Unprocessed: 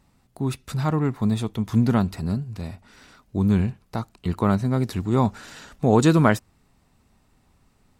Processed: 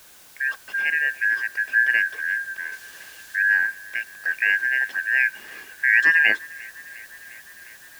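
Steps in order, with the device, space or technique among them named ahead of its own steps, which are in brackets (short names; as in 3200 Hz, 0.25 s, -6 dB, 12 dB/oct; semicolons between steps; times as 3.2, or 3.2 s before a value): split-band scrambled radio (four-band scrambler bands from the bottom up 2143; BPF 370–3000 Hz; white noise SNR 25 dB); 2.72–3.36 bell 4100 Hz +5 dB 2.9 oct; band-limited delay 0.354 s, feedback 75%, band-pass 1500 Hz, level -23 dB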